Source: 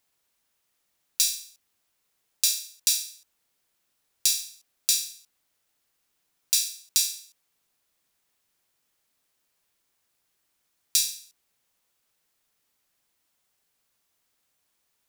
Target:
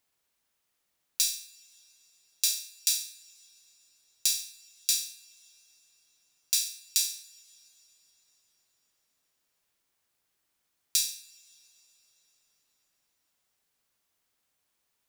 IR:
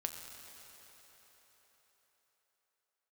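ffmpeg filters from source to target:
-filter_complex "[0:a]asplit=2[link_01][link_02];[link_02]highshelf=frequency=7500:gain=-10.5[link_03];[1:a]atrim=start_sample=2205[link_04];[link_03][link_04]afir=irnorm=-1:irlink=0,volume=-11dB[link_05];[link_01][link_05]amix=inputs=2:normalize=0,volume=-4.5dB"

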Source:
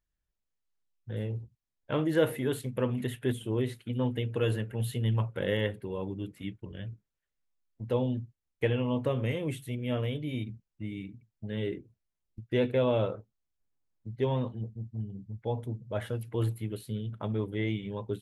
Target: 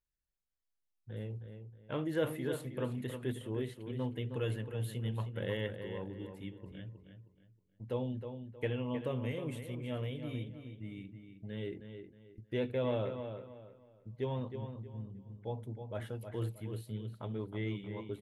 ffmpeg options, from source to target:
ffmpeg -i in.wav -filter_complex "[0:a]asplit=2[link_01][link_02];[link_02]adelay=315,lowpass=frequency=4000:poles=1,volume=-8dB,asplit=2[link_03][link_04];[link_04]adelay=315,lowpass=frequency=4000:poles=1,volume=0.31,asplit=2[link_05][link_06];[link_06]adelay=315,lowpass=frequency=4000:poles=1,volume=0.31,asplit=2[link_07][link_08];[link_08]adelay=315,lowpass=frequency=4000:poles=1,volume=0.31[link_09];[link_01][link_03][link_05][link_07][link_09]amix=inputs=5:normalize=0,volume=-7.5dB" out.wav

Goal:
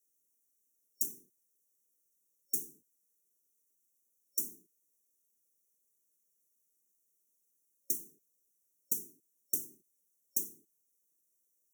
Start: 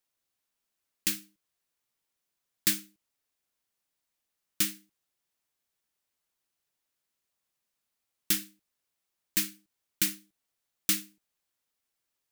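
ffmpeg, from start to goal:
ffmpeg -i in.wav -af "afftfilt=real='hypot(re,im)*cos(2*PI*random(0))':imag='hypot(re,im)*sin(2*PI*random(1))':win_size=512:overlap=0.75,highpass=180,highshelf=frequency=6400:gain=7.5,acompressor=threshold=-37dB:ratio=16,asetrate=46305,aresample=44100,afftfilt=real='re*(1-between(b*sr/4096,550,5500))':imag='im*(1-between(b*sr/4096,550,5500))':win_size=4096:overlap=0.75,volume=8dB" out.wav

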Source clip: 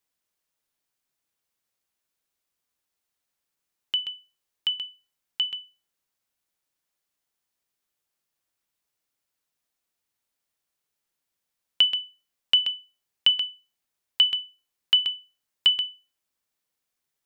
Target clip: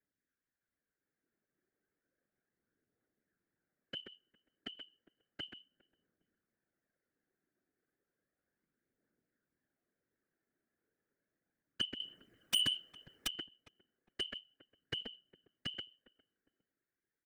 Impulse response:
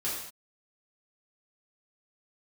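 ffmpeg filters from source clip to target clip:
-filter_complex "[0:a]firequalizer=gain_entry='entry(130,0);entry(240,8);entry(970,-15);entry(1600,7);entry(2800,-16)':delay=0.05:min_phase=1,acrossover=split=110|1100[link_01][link_02][link_03];[link_02]dynaudnorm=framelen=180:gausssize=13:maxgain=10.5dB[link_04];[link_01][link_04][link_03]amix=inputs=3:normalize=0,asettb=1/sr,asplit=3[link_05][link_06][link_07];[link_05]atrim=end=12.004[link_08];[link_06]atrim=start=12:end=13.27,asetpts=PTS-STARTPTS,afade=type=in:duration=0.004:curve=qsin,afade=type=out:start_time=1.266:duration=0.004:curve=qsin,aeval=exprs='0.211*sin(PI/2*5.01*val(0)/0.211)':channel_layout=same[link_09];[link_07]atrim=start=13.266[link_10];[link_08][link_09]acrossfade=duration=0.004:curve1=hsin:curve2=qsin[link_11];[link_11][link_10]acrossfade=duration=0.004:curve1=qsin:curve2=hsin,aphaser=in_gain=1:out_gain=1:delay=3.2:decay=0.37:speed=0.33:type=triangular,asplit=2[link_12][link_13];[link_13]adelay=407,lowpass=frequency=970:poles=1,volume=-23dB,asplit=2[link_14][link_15];[link_15]adelay=407,lowpass=frequency=970:poles=1,volume=0.32[link_16];[link_12][link_14][link_16]amix=inputs=3:normalize=0,asoftclip=type=tanh:threshold=-22.5dB,afftfilt=real='hypot(re,im)*cos(2*PI*random(0))':imag='hypot(re,im)*sin(2*PI*random(1))':win_size=512:overlap=0.75,volume=1dB"

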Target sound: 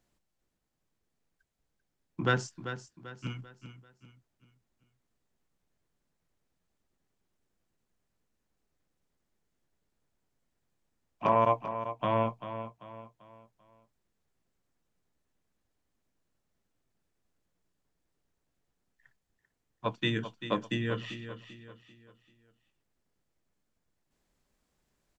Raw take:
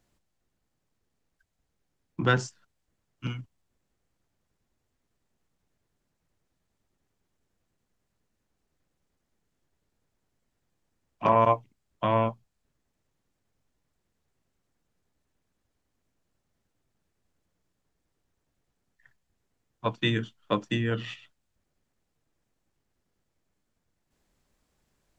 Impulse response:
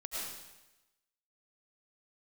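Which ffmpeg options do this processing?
-af "equalizer=frequency=84:width=1.5:gain=-3.5,aecho=1:1:391|782|1173|1564:0.282|0.11|0.0429|0.0167,volume=-3.5dB"

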